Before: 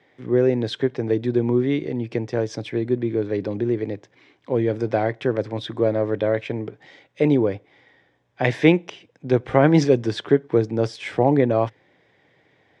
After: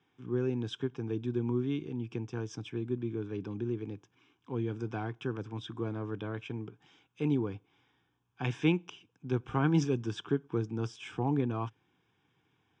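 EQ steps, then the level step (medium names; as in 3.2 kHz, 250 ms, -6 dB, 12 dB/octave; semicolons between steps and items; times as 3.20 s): static phaser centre 2.9 kHz, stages 8; -8.0 dB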